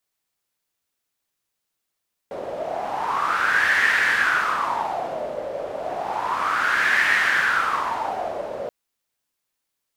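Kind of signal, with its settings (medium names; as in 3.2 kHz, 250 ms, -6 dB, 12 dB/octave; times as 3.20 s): wind-like swept noise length 6.38 s, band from 560 Hz, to 1.8 kHz, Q 6.6, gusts 2, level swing 11 dB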